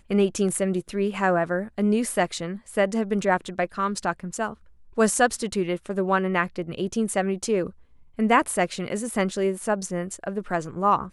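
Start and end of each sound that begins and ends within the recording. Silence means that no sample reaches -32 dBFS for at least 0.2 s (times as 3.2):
4.98–7.7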